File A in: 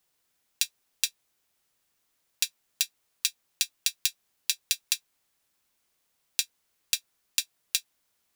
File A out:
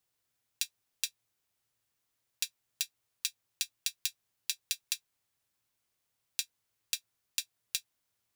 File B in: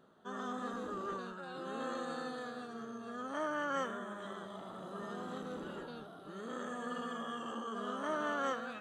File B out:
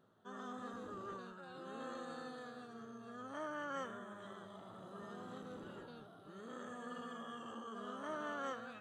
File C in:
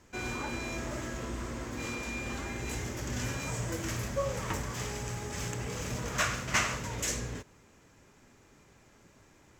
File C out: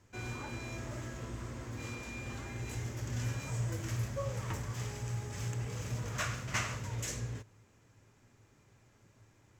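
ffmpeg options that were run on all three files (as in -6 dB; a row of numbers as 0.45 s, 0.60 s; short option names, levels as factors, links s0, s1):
-af "equalizer=f=110:t=o:w=0.37:g=14,volume=0.447"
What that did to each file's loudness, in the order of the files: -7.0 LU, -7.0 LU, -4.0 LU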